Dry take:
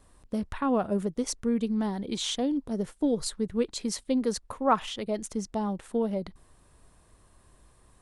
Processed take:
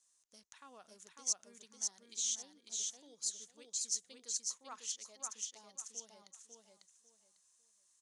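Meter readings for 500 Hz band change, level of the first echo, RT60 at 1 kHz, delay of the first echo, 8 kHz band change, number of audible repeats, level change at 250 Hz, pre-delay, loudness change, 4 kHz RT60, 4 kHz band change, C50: -31.0 dB, -3.0 dB, no reverb, 548 ms, +2.5 dB, 3, -37.0 dB, no reverb, -10.0 dB, no reverb, -7.5 dB, no reverb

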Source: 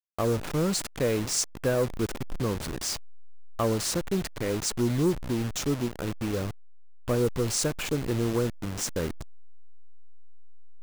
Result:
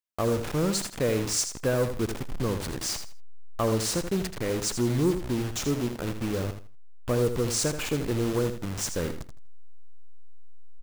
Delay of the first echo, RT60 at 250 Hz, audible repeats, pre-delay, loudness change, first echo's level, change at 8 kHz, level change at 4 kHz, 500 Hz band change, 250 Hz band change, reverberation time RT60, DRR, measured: 81 ms, no reverb, 3, no reverb, +0.5 dB, -9.0 dB, +0.5 dB, +0.5 dB, +0.5 dB, +0.5 dB, no reverb, no reverb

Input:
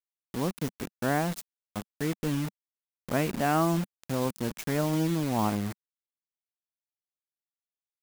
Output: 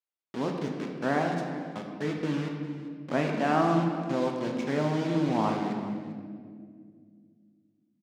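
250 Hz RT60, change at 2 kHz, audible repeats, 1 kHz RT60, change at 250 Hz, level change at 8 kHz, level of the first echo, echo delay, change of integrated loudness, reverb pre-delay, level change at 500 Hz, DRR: 3.3 s, +1.0 dB, 1, 1.6 s, +1.5 dB, -10.5 dB, -16.5 dB, 398 ms, 0.0 dB, 3 ms, +2.5 dB, 1.5 dB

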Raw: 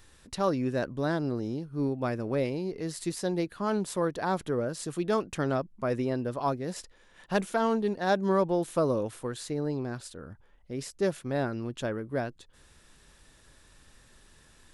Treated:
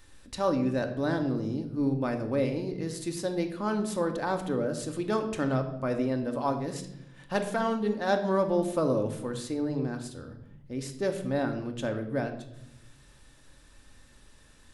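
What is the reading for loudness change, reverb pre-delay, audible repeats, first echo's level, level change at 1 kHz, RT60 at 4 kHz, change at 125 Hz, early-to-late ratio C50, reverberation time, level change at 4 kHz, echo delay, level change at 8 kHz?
+0.5 dB, 3 ms, no echo, no echo, -0.5 dB, 0.60 s, +0.5 dB, 10.0 dB, 0.80 s, 0.0 dB, no echo, -1.0 dB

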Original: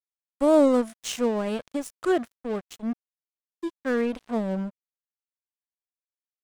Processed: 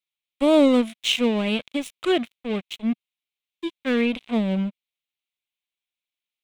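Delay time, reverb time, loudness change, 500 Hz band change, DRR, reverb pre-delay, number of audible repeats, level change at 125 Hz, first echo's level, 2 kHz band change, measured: no echo, no reverb, +3.0 dB, +0.5 dB, no reverb, no reverb, no echo, no reading, no echo, +6.5 dB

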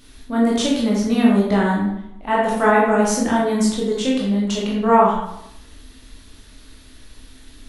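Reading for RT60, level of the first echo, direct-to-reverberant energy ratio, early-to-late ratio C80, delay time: 0.80 s, no echo, -4.5 dB, 4.5 dB, no echo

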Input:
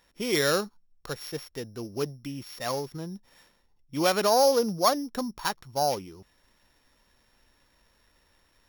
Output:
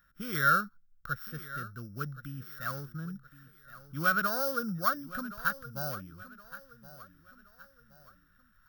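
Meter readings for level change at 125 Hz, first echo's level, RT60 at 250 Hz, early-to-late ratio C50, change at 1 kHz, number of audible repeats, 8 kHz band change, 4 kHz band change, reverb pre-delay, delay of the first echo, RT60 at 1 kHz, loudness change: 0.0 dB, -16.0 dB, no reverb, no reverb, -3.5 dB, 3, -12.0 dB, -13.0 dB, no reverb, 1070 ms, no reverb, -4.5 dB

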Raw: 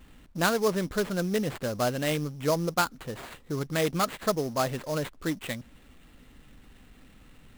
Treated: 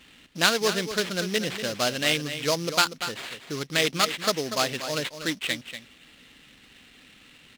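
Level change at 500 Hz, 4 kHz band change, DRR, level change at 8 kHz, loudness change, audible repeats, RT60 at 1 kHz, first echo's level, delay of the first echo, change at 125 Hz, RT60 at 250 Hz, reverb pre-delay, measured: 0.0 dB, +11.5 dB, no reverb, +7.0 dB, +3.5 dB, 1, no reverb, -10.5 dB, 240 ms, -3.5 dB, no reverb, no reverb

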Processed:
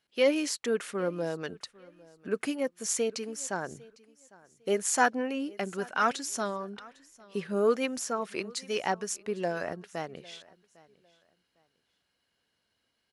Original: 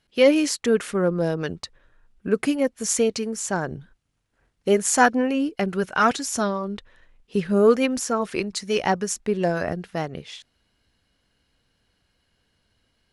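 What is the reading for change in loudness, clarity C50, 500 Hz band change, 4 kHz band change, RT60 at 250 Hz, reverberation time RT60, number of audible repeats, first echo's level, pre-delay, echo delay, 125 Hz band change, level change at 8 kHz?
-8.0 dB, no reverb, -8.0 dB, -6.5 dB, no reverb, no reverb, 1, -23.0 dB, no reverb, 803 ms, -13.0 dB, -6.5 dB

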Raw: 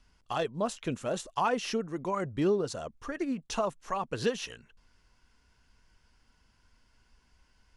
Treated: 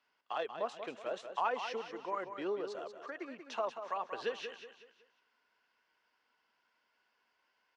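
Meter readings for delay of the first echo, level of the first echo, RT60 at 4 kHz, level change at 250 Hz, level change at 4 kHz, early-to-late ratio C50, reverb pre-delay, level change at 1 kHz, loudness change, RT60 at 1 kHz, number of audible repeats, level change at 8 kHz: 186 ms, -9.0 dB, no reverb, -14.5 dB, -7.5 dB, no reverb, no reverb, -4.0 dB, -7.0 dB, no reverb, 4, -17.0 dB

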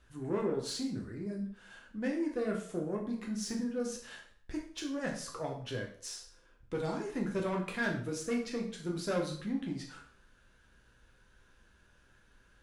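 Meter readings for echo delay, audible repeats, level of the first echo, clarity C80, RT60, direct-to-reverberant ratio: no echo, no echo, no echo, 11.0 dB, 0.50 s, -0.5 dB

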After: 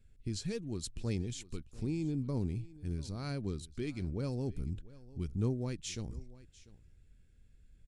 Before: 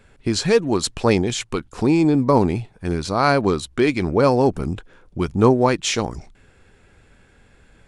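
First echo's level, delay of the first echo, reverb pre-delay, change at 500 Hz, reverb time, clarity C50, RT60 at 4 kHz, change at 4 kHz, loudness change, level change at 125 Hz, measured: -20.0 dB, 695 ms, no reverb, -24.0 dB, no reverb, no reverb, no reverb, -20.0 dB, -19.0 dB, -12.0 dB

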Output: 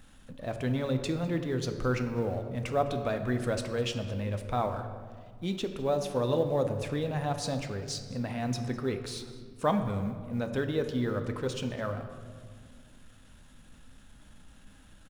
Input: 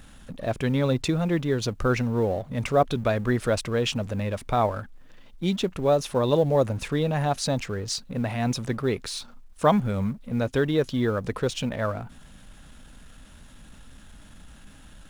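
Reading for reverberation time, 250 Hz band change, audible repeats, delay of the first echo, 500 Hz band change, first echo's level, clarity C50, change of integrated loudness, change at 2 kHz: 1.9 s, -6.0 dB, 1, 205 ms, -6.0 dB, -20.5 dB, 8.5 dB, -6.0 dB, -6.5 dB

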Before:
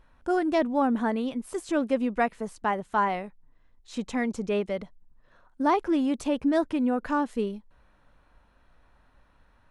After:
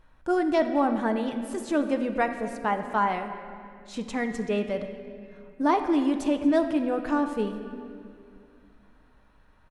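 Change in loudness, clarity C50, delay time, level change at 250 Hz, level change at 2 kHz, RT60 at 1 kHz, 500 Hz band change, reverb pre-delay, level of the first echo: +1.0 dB, 8.5 dB, 233 ms, +1.0 dB, +1.0 dB, 2.1 s, +1.0 dB, 6 ms, -20.0 dB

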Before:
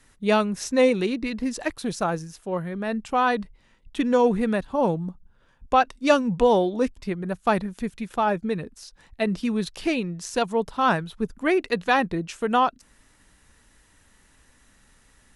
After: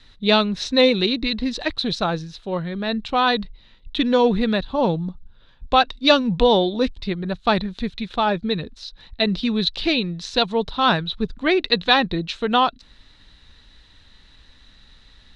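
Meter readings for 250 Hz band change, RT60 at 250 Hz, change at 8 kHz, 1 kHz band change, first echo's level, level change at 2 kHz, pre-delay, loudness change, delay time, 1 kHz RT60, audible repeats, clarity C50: +3.0 dB, no reverb, no reading, +2.0 dB, no echo, +4.0 dB, no reverb, +3.5 dB, no echo, no reverb, no echo, no reverb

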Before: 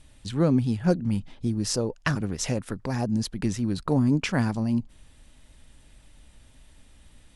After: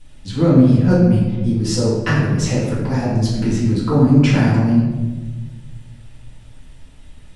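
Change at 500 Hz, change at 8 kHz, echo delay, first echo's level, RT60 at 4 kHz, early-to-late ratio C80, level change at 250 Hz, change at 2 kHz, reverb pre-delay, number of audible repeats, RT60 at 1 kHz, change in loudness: +9.5 dB, +4.0 dB, no echo, no echo, 0.75 s, 3.0 dB, +10.5 dB, +7.5 dB, 4 ms, no echo, 1.0 s, +10.5 dB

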